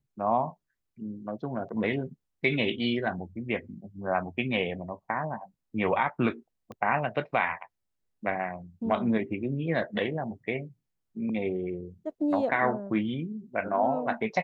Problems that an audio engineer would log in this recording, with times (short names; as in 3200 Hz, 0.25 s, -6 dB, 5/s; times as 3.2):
6.72 pop -29 dBFS